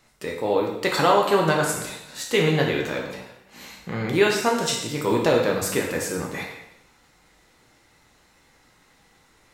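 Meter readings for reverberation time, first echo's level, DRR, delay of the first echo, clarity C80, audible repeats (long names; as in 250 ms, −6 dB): 0.85 s, no echo audible, −1.0 dB, no echo audible, 6.5 dB, no echo audible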